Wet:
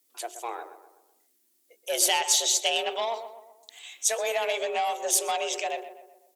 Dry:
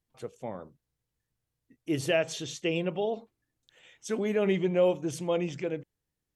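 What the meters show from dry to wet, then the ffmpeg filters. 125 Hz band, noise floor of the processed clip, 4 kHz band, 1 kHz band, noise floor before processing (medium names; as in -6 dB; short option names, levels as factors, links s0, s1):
under -30 dB, -69 dBFS, +12.5 dB, +11.5 dB, under -85 dBFS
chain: -filter_complex "[0:a]afreqshift=230,acompressor=threshold=0.0501:ratio=5,bandreject=f=60:t=h:w=6,bandreject=f=120:t=h:w=6,bandreject=f=180:t=h:w=6,bandreject=f=240:t=h:w=6,bandreject=f=300:t=h:w=6,bandreject=f=360:t=h:w=6,bandreject=f=420:t=h:w=6,asoftclip=type=tanh:threshold=0.0668,crystalizer=i=9:c=0,asplit=2[s0][s1];[s1]adelay=126,lowpass=f=1900:p=1,volume=0.299,asplit=2[s2][s3];[s3]adelay=126,lowpass=f=1900:p=1,volume=0.5,asplit=2[s4][s5];[s5]adelay=126,lowpass=f=1900:p=1,volume=0.5,asplit=2[s6][s7];[s7]adelay=126,lowpass=f=1900:p=1,volume=0.5,asplit=2[s8][s9];[s9]adelay=126,lowpass=f=1900:p=1,volume=0.5[s10];[s0][s2][s4][s6][s8][s10]amix=inputs=6:normalize=0"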